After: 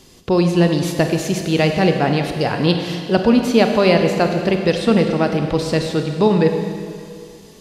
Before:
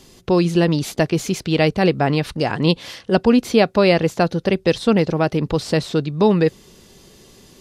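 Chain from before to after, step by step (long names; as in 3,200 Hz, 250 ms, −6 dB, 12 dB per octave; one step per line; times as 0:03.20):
four-comb reverb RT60 2.3 s, combs from 31 ms, DRR 4.5 dB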